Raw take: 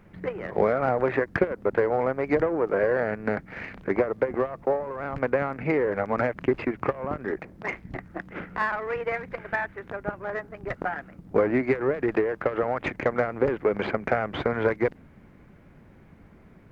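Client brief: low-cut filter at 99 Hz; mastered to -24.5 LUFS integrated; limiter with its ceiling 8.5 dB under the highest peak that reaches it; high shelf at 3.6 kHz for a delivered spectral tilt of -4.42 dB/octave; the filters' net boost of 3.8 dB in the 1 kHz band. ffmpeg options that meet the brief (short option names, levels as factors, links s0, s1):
-af "highpass=99,equalizer=f=1000:t=o:g=4.5,highshelf=f=3600:g=7,volume=1.58,alimiter=limit=0.251:level=0:latency=1"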